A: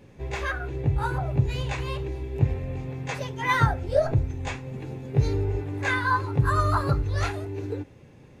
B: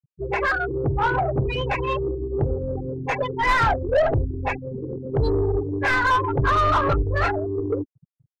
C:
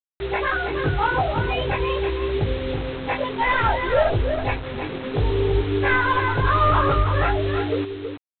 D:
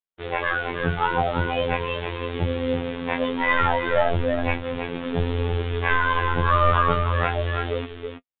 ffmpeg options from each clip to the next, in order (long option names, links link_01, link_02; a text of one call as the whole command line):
ffmpeg -i in.wav -filter_complex "[0:a]afftfilt=real='re*gte(hypot(re,im),0.0398)':imag='im*gte(hypot(re,im),0.0398)':win_size=1024:overlap=0.75,asplit=2[link_01][link_02];[link_02]highpass=frequency=720:poles=1,volume=26dB,asoftclip=type=tanh:threshold=-7dB[link_03];[link_01][link_03]amix=inputs=2:normalize=0,lowpass=frequency=1400:poles=1,volume=-6dB,asubboost=boost=4.5:cutoff=64,volume=-2.5dB" out.wav
ffmpeg -i in.wav -af "flanger=delay=17.5:depth=2.3:speed=0.52,aresample=8000,acrusher=bits=5:mix=0:aa=0.000001,aresample=44100,aecho=1:1:324:0.447,volume=2.5dB" out.wav
ffmpeg -i in.wav -af "flanger=delay=7:depth=1.1:regen=38:speed=1:shape=sinusoidal,aresample=8000,aresample=44100,afftfilt=real='hypot(re,im)*cos(PI*b)':imag='0':win_size=2048:overlap=0.75,volume=6.5dB" out.wav